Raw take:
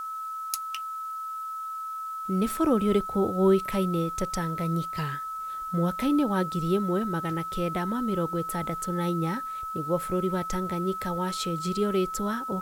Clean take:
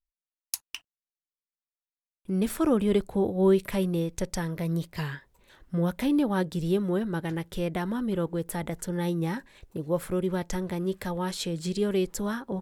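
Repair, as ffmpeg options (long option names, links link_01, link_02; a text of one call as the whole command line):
ffmpeg -i in.wav -af "bandreject=frequency=1300:width=30,agate=range=-21dB:threshold=-27dB" out.wav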